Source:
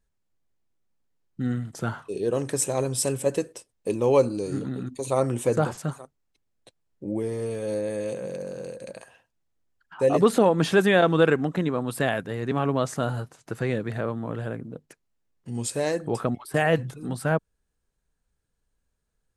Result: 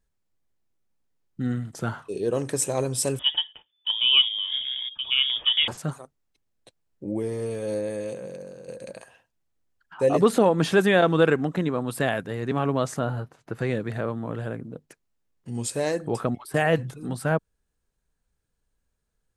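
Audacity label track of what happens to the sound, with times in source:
3.190000	5.680000	frequency inversion carrier 3.5 kHz
7.770000	8.680000	fade out, to -9 dB
12.990000	13.590000	peaking EQ 8.3 kHz -12.5 dB 1.8 oct

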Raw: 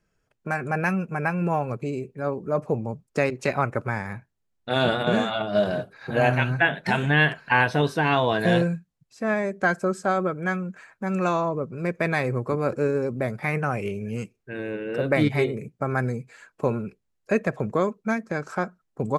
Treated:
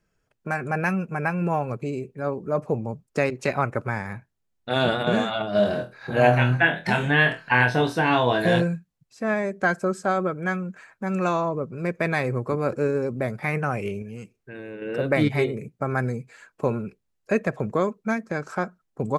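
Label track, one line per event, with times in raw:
5.570000	8.600000	flutter echo walls apart 4.2 m, dies away in 0.23 s
14.020000	14.820000	compression 2:1, threshold -38 dBFS

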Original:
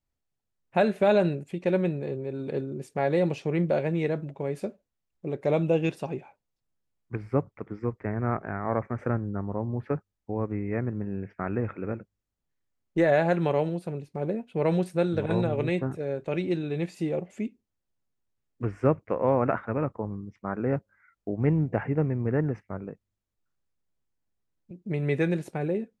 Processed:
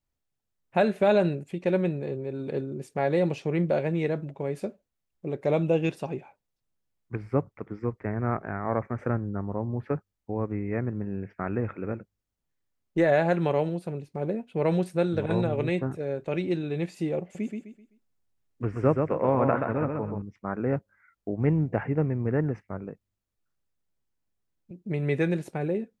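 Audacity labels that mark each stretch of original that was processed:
17.220000	20.220000	feedback delay 128 ms, feedback 32%, level -4.5 dB

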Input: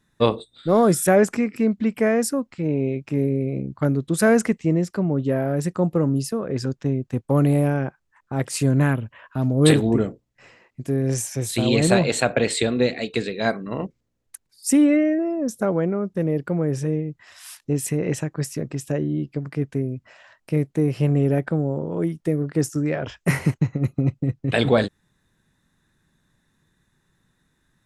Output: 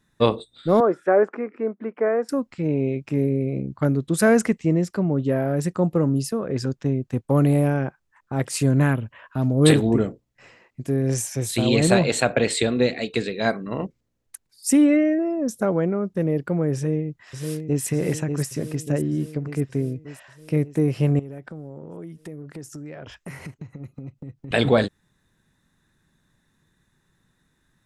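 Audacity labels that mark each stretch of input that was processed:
0.800000	2.290000	Chebyshev band-pass 370–1400 Hz
16.740000	17.830000	echo throw 590 ms, feedback 65%, level -5.5 dB
21.190000	24.510000	compression 4:1, threshold -36 dBFS

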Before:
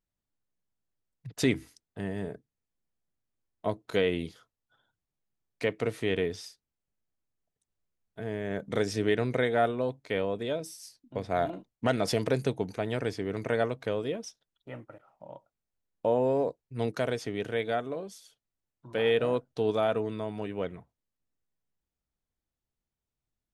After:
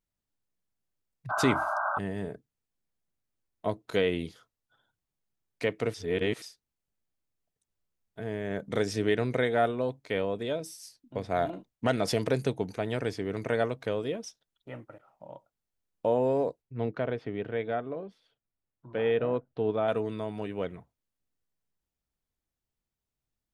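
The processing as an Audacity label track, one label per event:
1.290000	1.990000	painted sound noise 570–1600 Hz -30 dBFS
5.940000	6.420000	reverse
16.620000	19.880000	distance through air 420 m

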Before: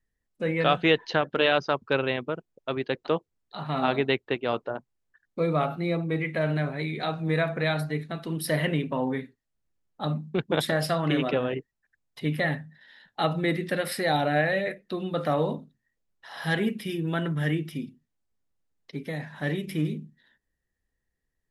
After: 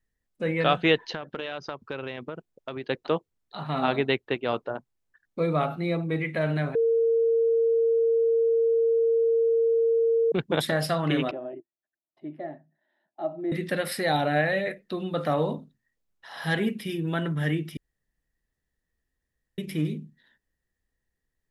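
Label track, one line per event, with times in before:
1.130000	2.840000	compression, threshold -30 dBFS
6.750000	10.320000	bleep 458 Hz -19 dBFS
11.310000	13.520000	two resonant band-passes 470 Hz, apart 0.87 oct
17.770000	19.580000	room tone

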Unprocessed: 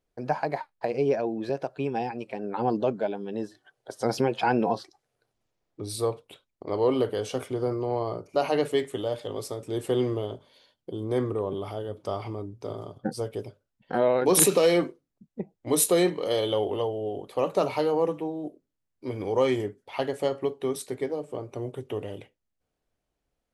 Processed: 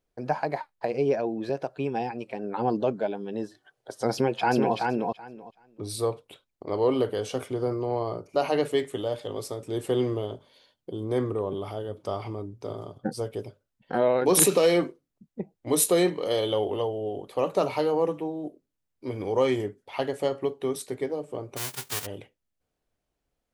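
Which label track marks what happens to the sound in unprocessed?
4.130000	4.740000	echo throw 380 ms, feedback 15%, level -3.5 dB
21.560000	22.050000	formants flattened exponent 0.1

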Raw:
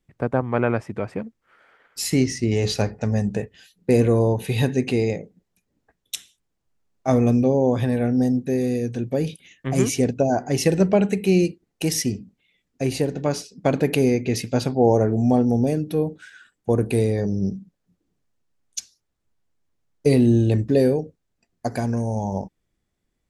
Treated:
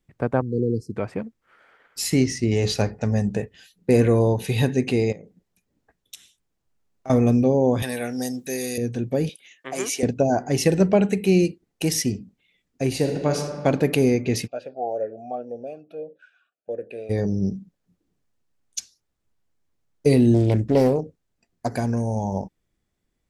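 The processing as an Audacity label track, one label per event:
0.410000	0.960000	spectral selection erased 510–4000 Hz
3.930000	4.500000	peaking EQ 1.2 kHz -> 6.5 kHz +6.5 dB
5.120000	7.100000	compression 3:1, threshold -39 dBFS
7.820000	8.780000	tilt EQ +4.5 dB/octave
9.290000	10.030000	high-pass 530 Hz
12.940000	13.370000	reverb throw, RT60 1.9 s, DRR 3.5 dB
14.460000	17.090000	talking filter a-e 2.9 Hz -> 1.1 Hz
20.340000	21.710000	loudspeaker Doppler distortion depth 0.41 ms

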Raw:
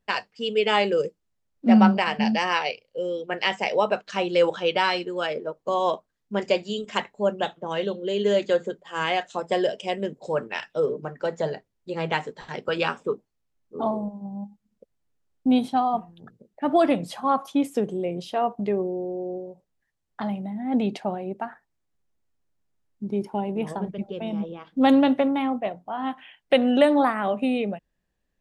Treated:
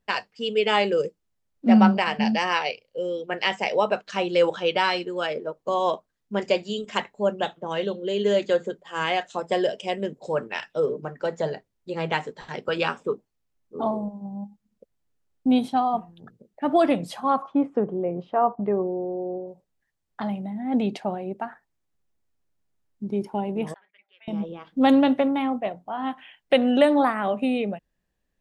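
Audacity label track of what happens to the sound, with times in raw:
17.420000	19.480000	resonant low-pass 1.2 kHz, resonance Q 2
23.740000	24.280000	ladder band-pass 2.2 kHz, resonance 65%

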